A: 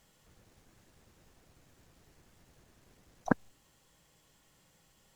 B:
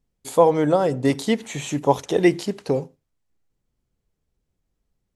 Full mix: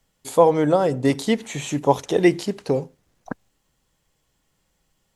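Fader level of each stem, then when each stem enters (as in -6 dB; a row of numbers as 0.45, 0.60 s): -4.0, +0.5 dB; 0.00, 0.00 s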